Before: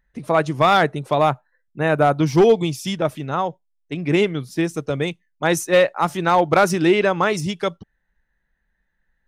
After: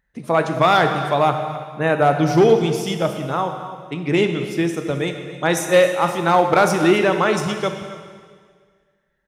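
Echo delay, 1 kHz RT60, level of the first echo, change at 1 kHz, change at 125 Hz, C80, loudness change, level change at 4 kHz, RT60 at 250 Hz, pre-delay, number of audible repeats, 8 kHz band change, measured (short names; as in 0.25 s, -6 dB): 0.266 s, 1.8 s, -15.0 dB, +1.5 dB, +0.5 dB, 7.5 dB, +1.0 dB, +1.0 dB, 1.9 s, 15 ms, 1, +1.0 dB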